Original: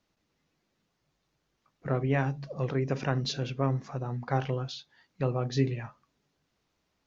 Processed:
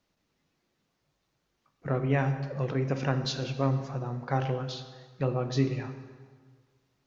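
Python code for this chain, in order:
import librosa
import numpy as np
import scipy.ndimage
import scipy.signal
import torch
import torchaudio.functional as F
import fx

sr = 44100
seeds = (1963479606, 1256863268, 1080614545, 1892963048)

y = fx.rev_plate(x, sr, seeds[0], rt60_s=1.7, hf_ratio=0.75, predelay_ms=0, drr_db=8.0)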